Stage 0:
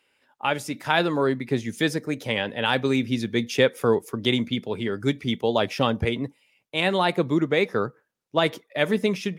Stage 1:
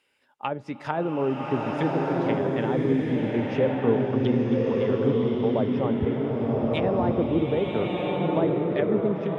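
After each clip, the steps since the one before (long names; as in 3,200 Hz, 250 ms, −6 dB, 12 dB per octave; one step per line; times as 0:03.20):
treble cut that deepens with the level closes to 730 Hz, closed at −21 dBFS
slow-attack reverb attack 1,280 ms, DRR −2.5 dB
level −2.5 dB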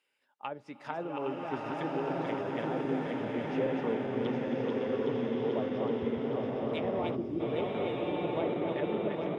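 feedback delay that plays each chunk backwards 407 ms, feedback 77%, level −4 dB
gain on a spectral selection 0:07.16–0:07.40, 420–4,400 Hz −11 dB
low-shelf EQ 180 Hz −11.5 dB
level −8.5 dB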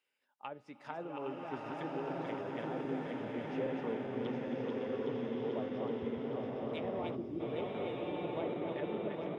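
tuned comb filter 250 Hz, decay 1.1 s, mix 50%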